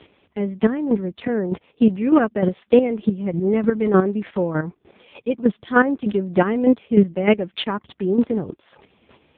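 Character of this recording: a quantiser's noise floor 12-bit, dither none; chopped level 3.3 Hz, depth 65%, duty 20%; AMR-NB

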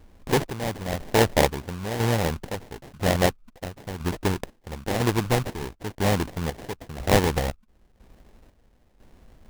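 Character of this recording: chopped level 1 Hz, depth 65%, duty 50%; aliases and images of a low sample rate 1300 Hz, jitter 20%

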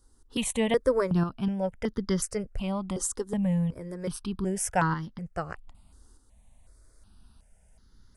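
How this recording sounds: tremolo saw up 0.81 Hz, depth 50%; notches that jump at a steady rate 2.7 Hz 640–2500 Hz

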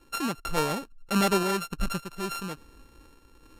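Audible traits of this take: a buzz of ramps at a fixed pitch in blocks of 32 samples; random-step tremolo; Vorbis

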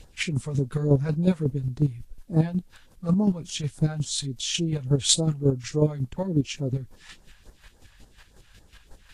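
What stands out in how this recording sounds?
phasing stages 2, 3.5 Hz, lowest notch 300–2600 Hz; a quantiser's noise floor 12-bit, dither triangular; chopped level 5.5 Hz, depth 60%, duty 25%; Vorbis

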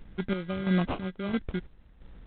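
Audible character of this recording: phasing stages 2, 2.8 Hz, lowest notch 680–1600 Hz; aliases and images of a low sample rate 1800 Hz, jitter 0%; chopped level 1.5 Hz, depth 60%, duty 50%; G.726

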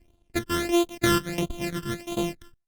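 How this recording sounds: a buzz of ramps at a fixed pitch in blocks of 128 samples; tremolo saw down 2.9 Hz, depth 75%; phasing stages 12, 1.5 Hz, lowest notch 710–1800 Hz; Opus

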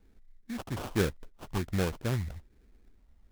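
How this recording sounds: phasing stages 12, 1.2 Hz, lowest notch 360–5000 Hz; aliases and images of a low sample rate 2000 Hz, jitter 20%; AAC

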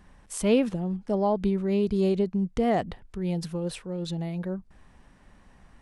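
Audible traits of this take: noise floor -57 dBFS; spectral tilt -7.0 dB/oct

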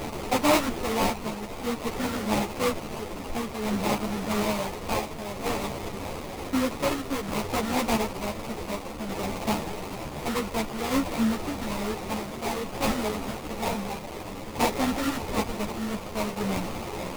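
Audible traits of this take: a quantiser's noise floor 6-bit, dither triangular; tremolo saw down 0.55 Hz, depth 45%; aliases and images of a low sample rate 1600 Hz, jitter 20%; a shimmering, thickened sound

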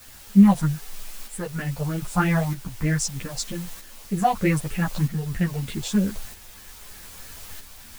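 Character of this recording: phasing stages 4, 3.2 Hz, lowest notch 280–1000 Hz; a quantiser's noise floor 8-bit, dither triangular; tremolo saw up 0.79 Hz, depth 50%; a shimmering, thickened sound

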